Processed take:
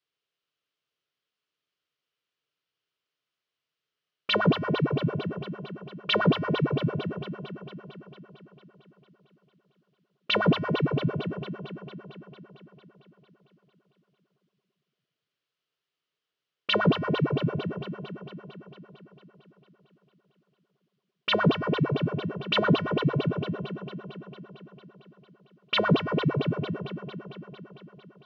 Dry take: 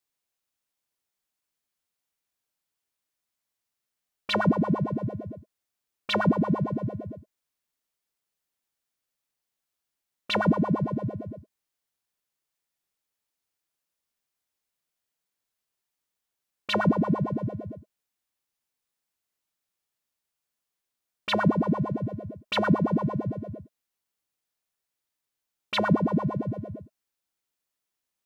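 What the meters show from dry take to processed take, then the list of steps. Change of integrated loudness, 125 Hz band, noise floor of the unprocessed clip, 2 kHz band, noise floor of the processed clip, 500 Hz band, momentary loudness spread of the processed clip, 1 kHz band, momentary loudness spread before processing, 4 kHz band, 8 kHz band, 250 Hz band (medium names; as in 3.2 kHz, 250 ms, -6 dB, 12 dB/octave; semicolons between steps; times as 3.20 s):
-0.5 dB, +1.5 dB, -85 dBFS, +3.0 dB, under -85 dBFS, +2.5 dB, 20 LU, -0.5 dB, 17 LU, +5.0 dB, no reading, -1.5 dB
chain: cabinet simulation 110–5000 Hz, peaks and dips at 140 Hz +6 dB, 220 Hz -5 dB, 430 Hz +6 dB, 840 Hz -8 dB, 1.3 kHz +4 dB, 3 kHz +7 dB; echo whose repeats swap between lows and highs 113 ms, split 1.4 kHz, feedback 84%, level -7 dB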